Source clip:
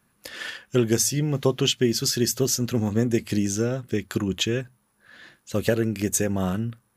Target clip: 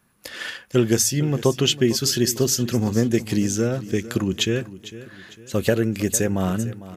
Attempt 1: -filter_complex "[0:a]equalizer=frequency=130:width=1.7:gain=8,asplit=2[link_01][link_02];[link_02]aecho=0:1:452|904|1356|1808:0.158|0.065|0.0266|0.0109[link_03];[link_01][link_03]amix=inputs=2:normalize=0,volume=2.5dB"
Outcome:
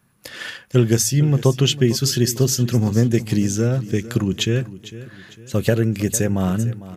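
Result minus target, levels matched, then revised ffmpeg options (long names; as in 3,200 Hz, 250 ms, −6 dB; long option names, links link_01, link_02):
125 Hz band +4.5 dB
-filter_complex "[0:a]asplit=2[link_01][link_02];[link_02]aecho=0:1:452|904|1356|1808:0.158|0.065|0.0266|0.0109[link_03];[link_01][link_03]amix=inputs=2:normalize=0,volume=2.5dB"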